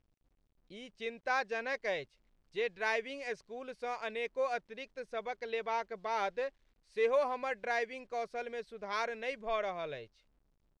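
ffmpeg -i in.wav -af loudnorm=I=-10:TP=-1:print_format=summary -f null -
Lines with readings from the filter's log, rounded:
Input Integrated:    -37.1 LUFS
Input True Peak:     -20.3 dBTP
Input LRA:             4.2 LU
Input Threshold:     -47.4 LUFS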